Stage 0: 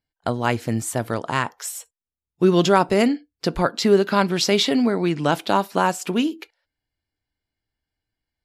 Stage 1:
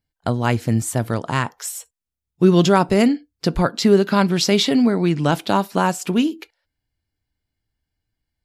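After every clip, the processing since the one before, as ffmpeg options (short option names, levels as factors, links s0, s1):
-af "bass=f=250:g=7,treble=f=4000:g=2"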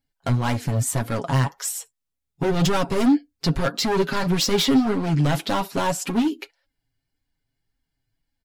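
-af "volume=8.91,asoftclip=hard,volume=0.112,flanger=delay=3.6:depth=4.3:regen=30:speed=1.8:shape=sinusoidal,aecho=1:1:7.3:0.46,volume=1.58"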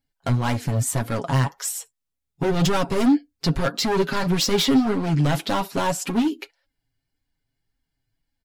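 -af anull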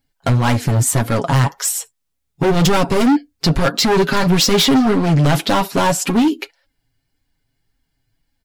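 -af "asoftclip=type=hard:threshold=0.119,volume=2.66"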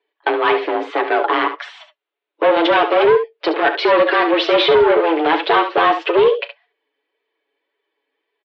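-af "aecho=1:1:36|70:0.141|0.299,highpass=f=210:t=q:w=0.5412,highpass=f=210:t=q:w=1.307,lowpass=f=3300:t=q:w=0.5176,lowpass=f=3300:t=q:w=0.7071,lowpass=f=3300:t=q:w=1.932,afreqshift=160,apsyclip=2.99,volume=0.473"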